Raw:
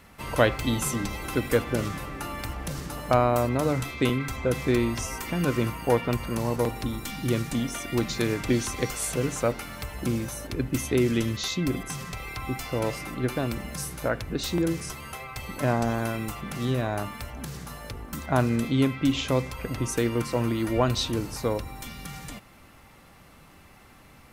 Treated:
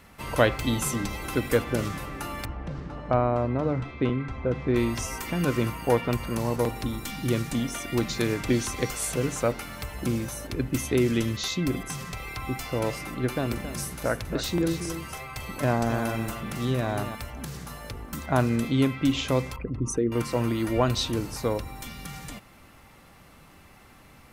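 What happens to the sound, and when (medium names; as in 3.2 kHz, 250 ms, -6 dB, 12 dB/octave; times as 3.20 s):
2.45–4.76 s: tape spacing loss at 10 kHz 33 dB
13.17–17.15 s: delay 273 ms -10 dB
19.56–20.12 s: resonances exaggerated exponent 2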